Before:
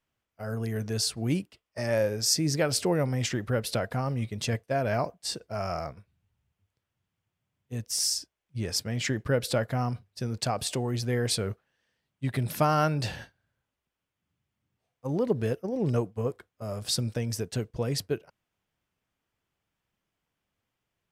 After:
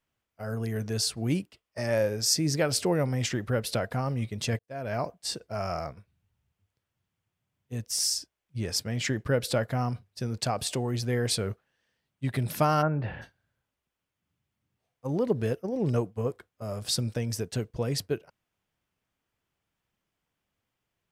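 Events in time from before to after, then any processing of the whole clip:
4.59–5.12 s: fade in
12.81–13.21 s: low-pass 1.4 kHz -> 2.7 kHz 24 dB/octave

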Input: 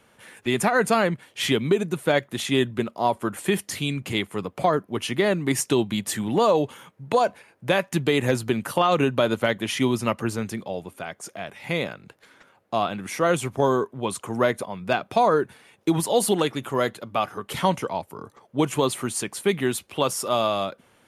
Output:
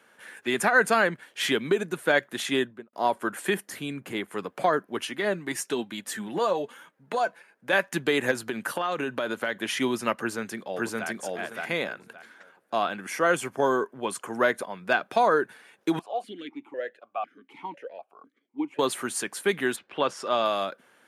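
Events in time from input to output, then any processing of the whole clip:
2.52–2.93 s: studio fade out
3.54–4.28 s: peaking EQ 4.5 kHz -8.5 dB 2.6 oct
5.05–7.73 s: flange 1.1 Hz, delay 3 ms, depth 3.3 ms, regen +48%
8.31–9.56 s: compression 4:1, threshold -22 dBFS
10.19–11.08 s: echo throw 570 ms, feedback 20%, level 0 dB
12.95–14.32 s: band-stop 3.8 kHz, Q 8.3
15.99–18.79 s: stepped vowel filter 4 Hz
19.75–20.44 s: low-pass 2.5 kHz -> 6.1 kHz
whole clip: high-pass 240 Hz 12 dB/octave; peaking EQ 1.6 kHz +8.5 dB 0.41 oct; trim -2.5 dB

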